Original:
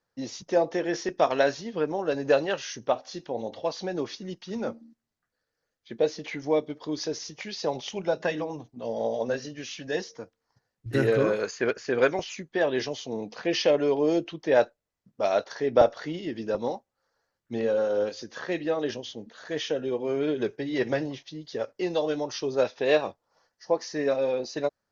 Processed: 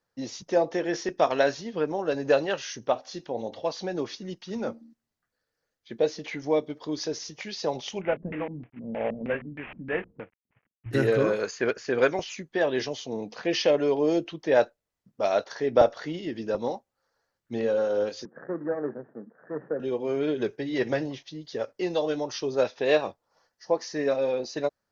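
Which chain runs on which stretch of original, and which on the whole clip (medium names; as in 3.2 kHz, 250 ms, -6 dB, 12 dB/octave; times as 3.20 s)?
8.01–10.91 s: CVSD coder 16 kbps + LFO low-pass square 3.2 Hz 220–2300 Hz + distance through air 180 m
18.25–19.80 s: median filter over 41 samples + Chebyshev band-pass 130–1800 Hz, order 5
whole clip: none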